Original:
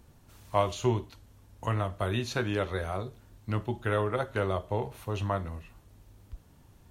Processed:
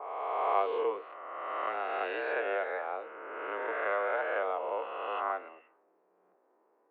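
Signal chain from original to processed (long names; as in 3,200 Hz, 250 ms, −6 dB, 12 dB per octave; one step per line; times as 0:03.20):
peak hold with a rise ahead of every peak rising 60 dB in 2.20 s
single-sideband voice off tune +82 Hz 320–2,600 Hz
low-pass that shuts in the quiet parts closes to 900 Hz, open at −25 dBFS
level −4.5 dB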